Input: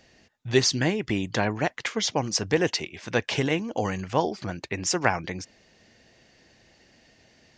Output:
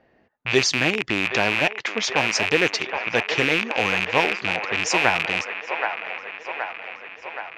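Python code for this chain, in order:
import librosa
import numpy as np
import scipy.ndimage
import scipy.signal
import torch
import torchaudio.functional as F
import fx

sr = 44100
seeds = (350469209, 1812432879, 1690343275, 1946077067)

p1 = fx.rattle_buzz(x, sr, strikes_db=-37.0, level_db=-12.0)
p2 = fx.low_shelf(p1, sr, hz=200.0, db=-11.0)
p3 = fx.env_lowpass(p2, sr, base_hz=1300.0, full_db=-21.0)
p4 = fx.high_shelf(p3, sr, hz=5800.0, db=-5.0)
p5 = p4 + fx.echo_wet_bandpass(p4, sr, ms=773, feedback_pct=62, hz=1100.0, wet_db=-4, dry=0)
y = F.gain(torch.from_numpy(p5), 3.5).numpy()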